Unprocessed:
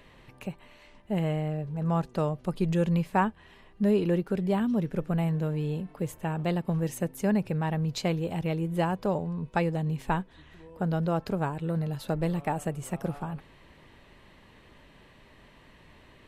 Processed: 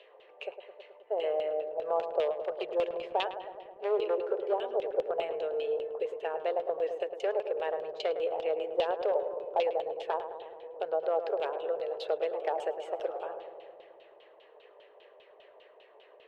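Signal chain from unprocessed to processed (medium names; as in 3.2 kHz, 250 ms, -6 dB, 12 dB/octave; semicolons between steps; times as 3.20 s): one-sided wavefolder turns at -22 dBFS; elliptic high-pass 440 Hz, stop band 50 dB; high-order bell 1.4 kHz -12.5 dB; in parallel at +2 dB: compression, threshold -37 dBFS, peak gain reduction 10 dB; on the sum: LFO low-pass saw down 5 Hz 740–3200 Hz; on a send: filtered feedback delay 107 ms, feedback 82%, low-pass 1.2 kHz, level -8 dB; on the sum: tape noise reduction on one side only decoder only; trim -1.5 dB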